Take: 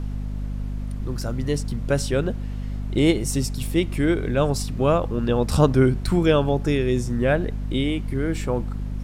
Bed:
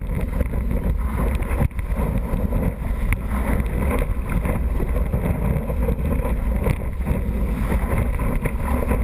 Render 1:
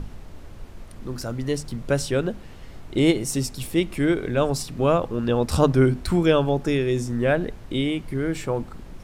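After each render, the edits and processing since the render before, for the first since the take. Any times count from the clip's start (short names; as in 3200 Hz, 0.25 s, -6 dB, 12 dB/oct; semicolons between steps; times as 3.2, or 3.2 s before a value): notches 50/100/150/200/250 Hz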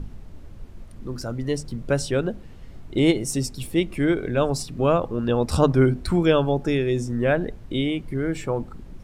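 denoiser 7 dB, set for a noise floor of -41 dBFS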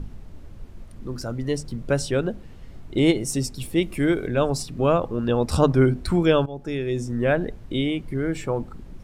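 3.82–4.27 high shelf 8900 Hz +11 dB; 6.46–7.4 fade in equal-power, from -17 dB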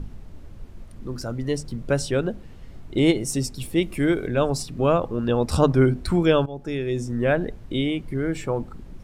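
nothing audible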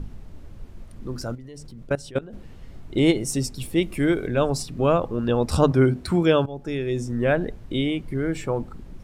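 1.35–2.33 level quantiser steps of 20 dB; 5.71–6.45 HPF 79 Hz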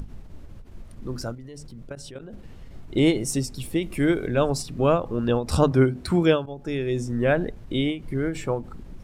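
upward compressor, threshold -42 dBFS; ending taper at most 150 dB/s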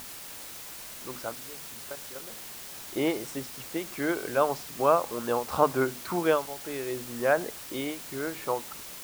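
band-pass 990 Hz, Q 1.4; in parallel at -6.5 dB: requantised 6-bit, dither triangular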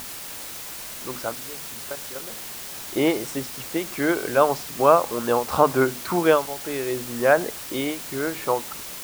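gain +6.5 dB; limiter -3 dBFS, peak gain reduction 2.5 dB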